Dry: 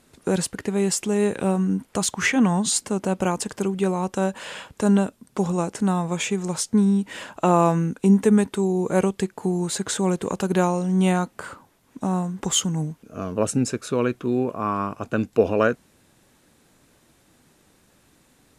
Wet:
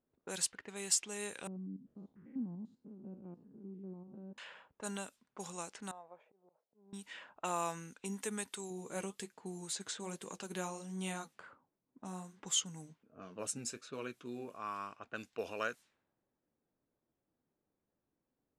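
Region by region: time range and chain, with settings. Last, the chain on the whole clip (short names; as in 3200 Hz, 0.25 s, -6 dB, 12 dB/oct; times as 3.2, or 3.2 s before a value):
1.47–4.38 stepped spectrum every 0.1 s + synth low-pass 260 Hz, resonance Q 2.3
5.91–6.93 band-pass 620 Hz, Q 3 + auto swell 0.162 s
8.7–14.55 bell 200 Hz +8 dB 2.7 oct + flange 1.3 Hz, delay 5.1 ms, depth 5.7 ms, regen -52%
whole clip: high shelf 7400 Hz -11.5 dB; low-pass opened by the level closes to 460 Hz, open at -19 dBFS; pre-emphasis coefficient 0.97; gain +1 dB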